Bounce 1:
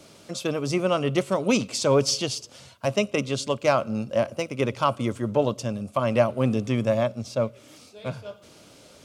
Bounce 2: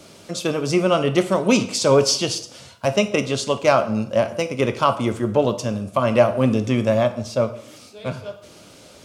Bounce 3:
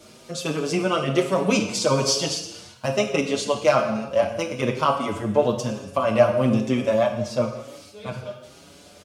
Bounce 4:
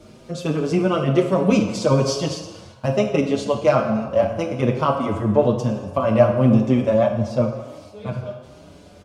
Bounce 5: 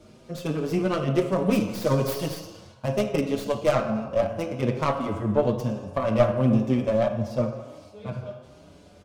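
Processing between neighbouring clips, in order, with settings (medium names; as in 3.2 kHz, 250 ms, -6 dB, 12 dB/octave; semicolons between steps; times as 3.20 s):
plate-style reverb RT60 0.64 s, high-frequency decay 0.8×, DRR 8.5 dB; trim +4.5 dB
gated-style reverb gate 380 ms falling, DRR 6.5 dB; endless flanger 6.2 ms +1.1 Hz
tilt EQ -2.5 dB/octave; band-passed feedback delay 77 ms, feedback 81%, band-pass 830 Hz, level -12.5 dB
tracing distortion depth 0.22 ms; trim -5.5 dB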